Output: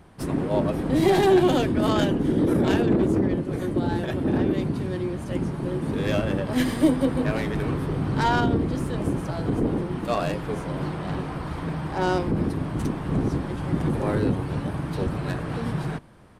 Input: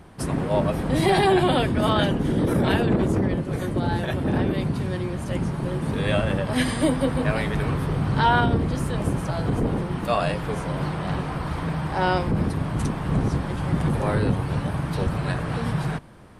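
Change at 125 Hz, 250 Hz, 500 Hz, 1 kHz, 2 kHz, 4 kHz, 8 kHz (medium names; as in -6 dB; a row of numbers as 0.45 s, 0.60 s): -3.0 dB, +1.0 dB, +0.5 dB, -3.5 dB, -4.0 dB, -4.0 dB, -3.5 dB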